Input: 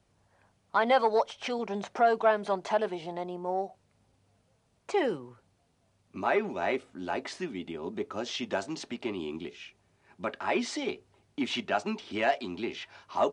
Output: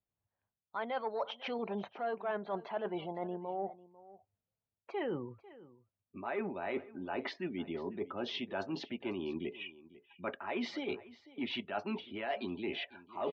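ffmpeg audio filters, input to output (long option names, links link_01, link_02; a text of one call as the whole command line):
ffmpeg -i in.wav -af "afftdn=noise_reduction=28:noise_floor=-47,lowpass=frequency=4000:width=0.5412,lowpass=frequency=4000:width=1.3066,areverse,acompressor=threshold=-38dB:ratio=6,areverse,aecho=1:1:497:0.112,volume=3dB" out.wav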